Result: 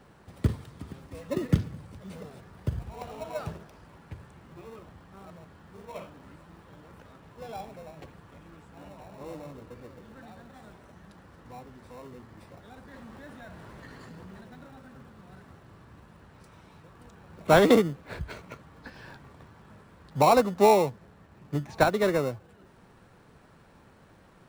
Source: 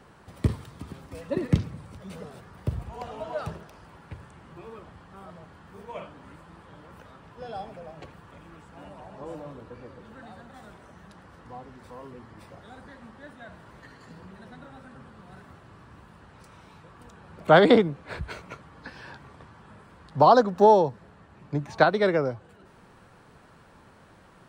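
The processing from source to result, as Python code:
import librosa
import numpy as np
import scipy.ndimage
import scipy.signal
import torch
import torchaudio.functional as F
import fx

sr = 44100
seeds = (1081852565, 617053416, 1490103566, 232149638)

p1 = fx.sample_hold(x, sr, seeds[0], rate_hz=1600.0, jitter_pct=0)
p2 = x + (p1 * librosa.db_to_amplitude(-8.0))
p3 = fx.env_flatten(p2, sr, amount_pct=70, at=(12.93, 14.41))
y = p3 * librosa.db_to_amplitude(-4.0)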